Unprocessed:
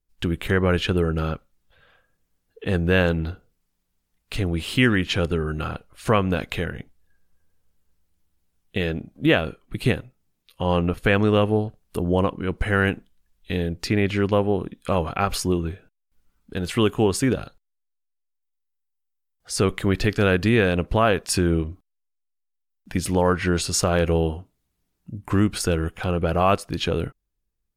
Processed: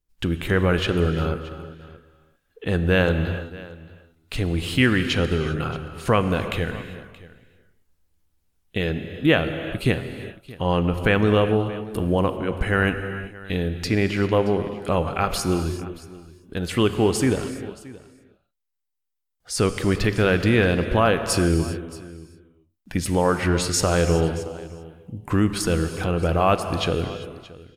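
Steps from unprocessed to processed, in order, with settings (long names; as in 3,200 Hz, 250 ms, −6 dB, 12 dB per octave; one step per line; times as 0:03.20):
single-tap delay 625 ms −20 dB
on a send at −8.5 dB: convolution reverb, pre-delay 3 ms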